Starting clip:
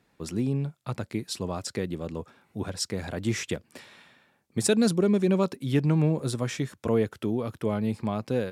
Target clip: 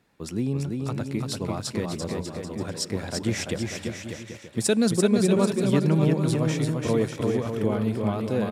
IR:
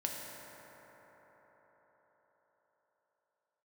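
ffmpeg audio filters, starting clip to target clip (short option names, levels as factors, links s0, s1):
-filter_complex "[0:a]aecho=1:1:340|595|786.2|929.7|1037:0.631|0.398|0.251|0.158|0.1,asplit=2[s0][s1];[1:a]atrim=start_sample=2205[s2];[s1][s2]afir=irnorm=-1:irlink=0,volume=0.075[s3];[s0][s3]amix=inputs=2:normalize=0"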